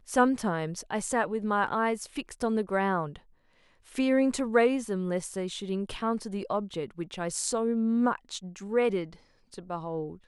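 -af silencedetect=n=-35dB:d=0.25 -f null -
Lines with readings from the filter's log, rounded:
silence_start: 3.16
silence_end: 3.95 | silence_duration: 0.79
silence_start: 9.05
silence_end: 9.58 | silence_duration: 0.53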